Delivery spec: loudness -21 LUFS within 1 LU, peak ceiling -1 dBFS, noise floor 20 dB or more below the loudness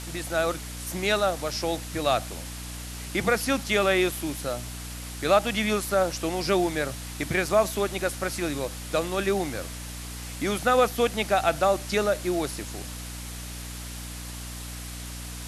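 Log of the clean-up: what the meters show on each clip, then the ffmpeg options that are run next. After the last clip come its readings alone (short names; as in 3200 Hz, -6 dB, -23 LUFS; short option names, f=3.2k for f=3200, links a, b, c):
hum 60 Hz; harmonics up to 300 Hz; hum level -36 dBFS; noise floor -37 dBFS; noise floor target -47 dBFS; loudness -27.0 LUFS; peak -7.0 dBFS; loudness target -21.0 LUFS
-> -af "bandreject=f=60:t=h:w=4,bandreject=f=120:t=h:w=4,bandreject=f=180:t=h:w=4,bandreject=f=240:t=h:w=4,bandreject=f=300:t=h:w=4"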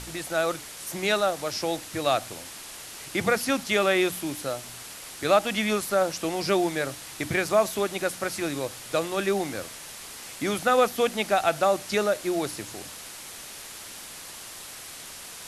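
hum none; noise floor -42 dBFS; noise floor target -46 dBFS
-> -af "afftdn=nr=6:nf=-42"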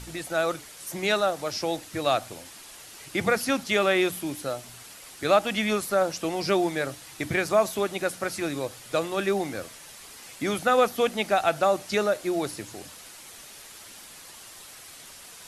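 noise floor -46 dBFS; noise floor target -47 dBFS
-> -af "afftdn=nr=6:nf=-46"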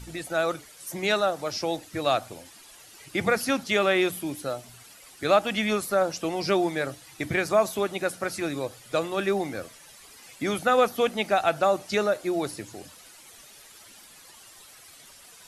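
noise floor -51 dBFS; loudness -26.5 LUFS; peak -7.5 dBFS; loudness target -21.0 LUFS
-> -af "volume=5.5dB"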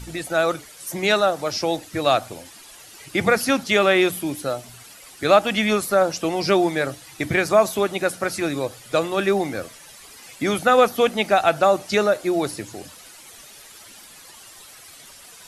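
loudness -21.0 LUFS; peak -2.0 dBFS; noise floor -45 dBFS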